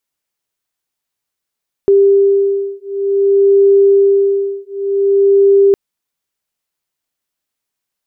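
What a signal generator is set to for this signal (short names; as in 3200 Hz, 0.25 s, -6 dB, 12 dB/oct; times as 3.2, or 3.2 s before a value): beating tones 396 Hz, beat 0.54 Hz, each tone -11 dBFS 3.86 s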